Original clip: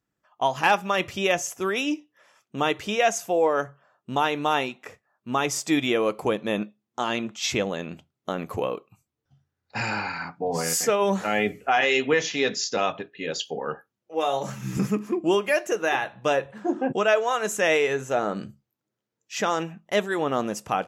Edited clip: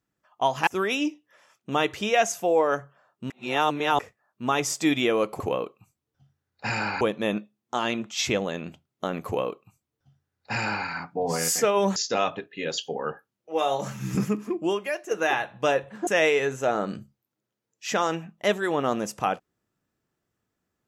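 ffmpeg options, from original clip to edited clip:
ffmpeg -i in.wav -filter_complex "[0:a]asplit=9[link_01][link_02][link_03][link_04][link_05][link_06][link_07][link_08][link_09];[link_01]atrim=end=0.672[link_10];[link_02]atrim=start=1.528:end=4.162[link_11];[link_03]atrim=start=4.158:end=4.852,asetpts=PTS-STARTPTS,areverse[link_12];[link_04]atrim=start=4.848:end=6.262[link_13];[link_05]atrim=start=8.508:end=10.122[link_14];[link_06]atrim=start=6.258:end=11.212[link_15];[link_07]atrim=start=12.578:end=15.73,asetpts=PTS-STARTPTS,afade=type=out:start_time=2.202:duration=0.95:silence=0.316228[link_16];[link_08]atrim=start=15.73:end=16.692,asetpts=PTS-STARTPTS,afade=type=in:duration=0.004:curve=hsin:silence=0.316228[link_17];[link_09]atrim=start=17.548[link_18];[link_10][link_11]acrossfade=duration=0.004:curve1=hsin:curve2=hsin[link_19];[link_19][link_12]acrossfade=duration=0.004:curve1=hsin:curve2=hsin[link_20];[link_20][link_13]acrossfade=duration=0.004:curve1=hsin:curve2=hsin[link_21];[link_21][link_14]acrossfade=duration=0.004:curve1=hsin:curve2=hsin[link_22];[link_22][link_15]acrossfade=duration=0.004:curve1=hsin:curve2=hsin[link_23];[link_16][link_17]concat=n=2:v=0:a=1[link_24];[link_23][link_24]acrossfade=duration=0.004:curve1=hsin:curve2=hsin[link_25];[link_25][link_18]acrossfade=duration=0.004:curve1=hsin:curve2=hsin" out.wav

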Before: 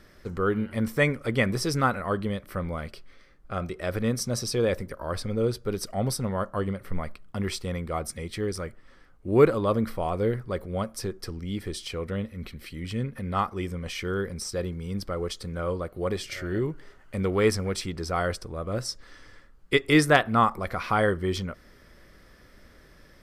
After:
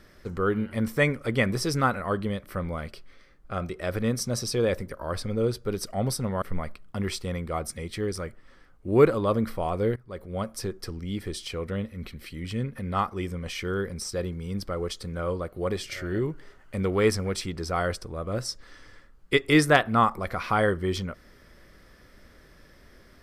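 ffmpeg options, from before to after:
ffmpeg -i in.wav -filter_complex "[0:a]asplit=3[link_01][link_02][link_03];[link_01]atrim=end=6.422[link_04];[link_02]atrim=start=6.818:end=10.36,asetpts=PTS-STARTPTS,afade=type=out:start_time=3.538:duration=0.004:curve=hsin:silence=0.1[link_05];[link_03]atrim=start=10.36,asetpts=PTS-STARTPTS,afade=type=in:duration=0.52:silence=0.1[link_06];[link_05][link_06]concat=n=2:v=0:a=1[link_07];[link_04][link_07]acrossfade=duration=0.004:curve1=hsin:curve2=hsin" out.wav

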